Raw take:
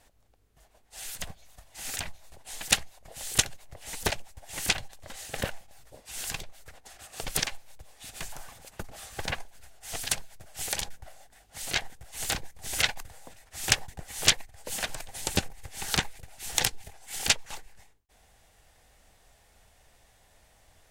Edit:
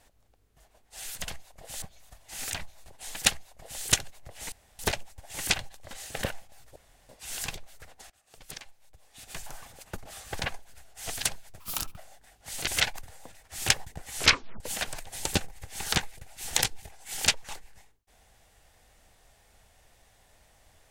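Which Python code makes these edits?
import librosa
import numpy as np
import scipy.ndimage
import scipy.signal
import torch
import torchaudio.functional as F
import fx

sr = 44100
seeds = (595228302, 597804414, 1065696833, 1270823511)

y = fx.edit(x, sr, fx.duplicate(start_s=2.75, length_s=0.54, to_s=1.28),
    fx.insert_room_tone(at_s=3.98, length_s=0.27),
    fx.insert_room_tone(at_s=5.95, length_s=0.33),
    fx.fade_in_from(start_s=6.96, length_s=1.43, curve='qua', floor_db=-19.5),
    fx.speed_span(start_s=10.46, length_s=0.6, speed=1.61),
    fx.cut(start_s=11.76, length_s=0.93),
    fx.tape_stop(start_s=14.19, length_s=0.43), tone=tone)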